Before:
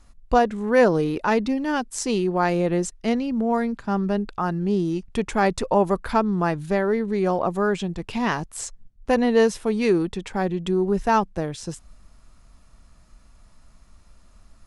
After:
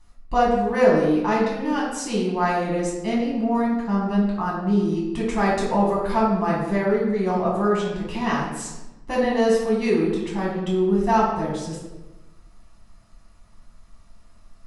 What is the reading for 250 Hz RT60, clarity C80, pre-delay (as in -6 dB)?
1.4 s, 4.5 dB, 6 ms